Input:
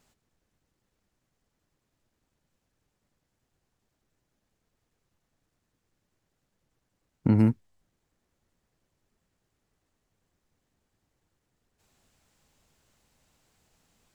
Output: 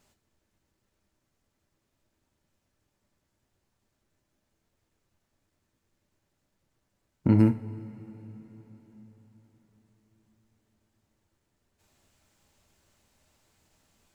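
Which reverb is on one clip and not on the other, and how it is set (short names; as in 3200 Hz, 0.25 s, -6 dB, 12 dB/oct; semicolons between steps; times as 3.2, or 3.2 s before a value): two-slope reverb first 0.28 s, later 4.9 s, from -20 dB, DRR 6 dB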